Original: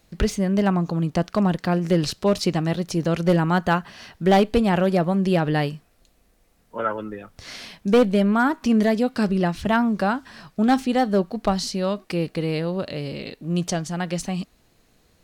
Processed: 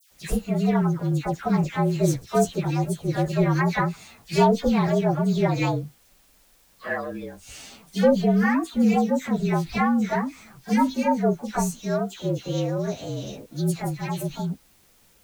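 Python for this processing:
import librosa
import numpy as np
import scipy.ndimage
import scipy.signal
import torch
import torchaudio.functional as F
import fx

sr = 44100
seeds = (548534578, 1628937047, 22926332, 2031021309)

y = fx.partial_stretch(x, sr, pct=114)
y = fx.quant_dither(y, sr, seeds[0], bits=10, dither='triangular')
y = fx.dispersion(y, sr, late='lows', ms=113.0, hz=1900.0)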